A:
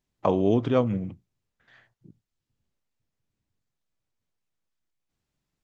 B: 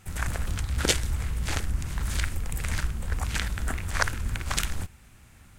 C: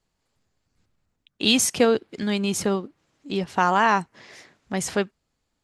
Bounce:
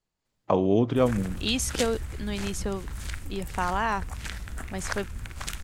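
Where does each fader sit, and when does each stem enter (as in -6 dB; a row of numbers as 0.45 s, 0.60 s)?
0.0 dB, -7.0 dB, -8.0 dB; 0.25 s, 0.90 s, 0.00 s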